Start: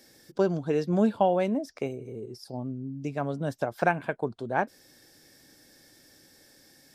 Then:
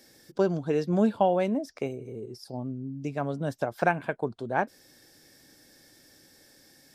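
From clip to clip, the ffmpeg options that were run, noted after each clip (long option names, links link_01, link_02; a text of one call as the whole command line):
ffmpeg -i in.wav -af anull out.wav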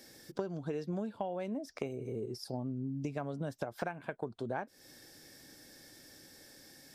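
ffmpeg -i in.wav -af "acompressor=threshold=-34dB:ratio=20,volume=1dB" out.wav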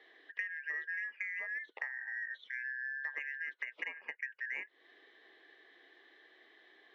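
ffmpeg -i in.wav -filter_complex "[0:a]afftfilt=real='real(if(lt(b,272),68*(eq(floor(b/68),0)*1+eq(floor(b/68),1)*0+eq(floor(b/68),2)*3+eq(floor(b/68),3)*2)+mod(b,68),b),0)':imag='imag(if(lt(b,272),68*(eq(floor(b/68),0)*1+eq(floor(b/68),1)*0+eq(floor(b/68),2)*3+eq(floor(b/68),3)*2)+mod(b,68),b),0)':win_size=2048:overlap=0.75,highpass=frequency=430:width=0.5412,highpass=frequency=430:width=1.3066,equalizer=frequency=480:width_type=q:width=4:gain=8,equalizer=frequency=720:width_type=q:width=4:gain=-8,equalizer=frequency=1500:width_type=q:width=4:gain=-9,equalizer=frequency=2200:width_type=q:width=4:gain=-5,lowpass=frequency=2500:width=0.5412,lowpass=frequency=2500:width=1.3066,asplit=2[link_01][link_02];[link_02]asoftclip=type=tanh:threshold=-34dB,volume=-10.5dB[link_03];[link_01][link_03]amix=inputs=2:normalize=0,volume=1dB" out.wav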